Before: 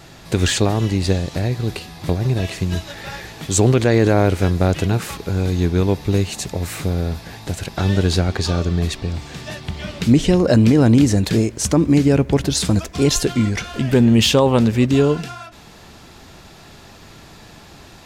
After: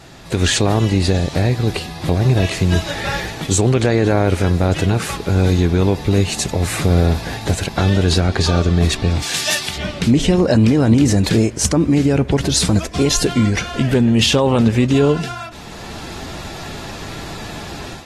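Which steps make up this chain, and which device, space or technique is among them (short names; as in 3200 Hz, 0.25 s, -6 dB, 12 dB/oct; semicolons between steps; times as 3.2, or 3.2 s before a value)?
9.22–9.77 tilt +4.5 dB/oct; low-bitrate web radio (AGC gain up to 11 dB; limiter -6 dBFS, peak gain reduction 5 dB; AAC 32 kbps 44100 Hz)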